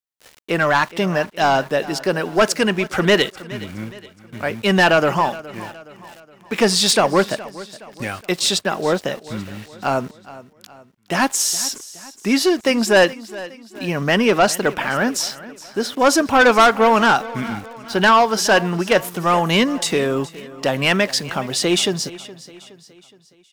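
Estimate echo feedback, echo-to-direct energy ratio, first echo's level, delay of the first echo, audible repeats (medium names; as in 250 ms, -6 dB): 47%, -17.0 dB, -18.0 dB, 418 ms, 3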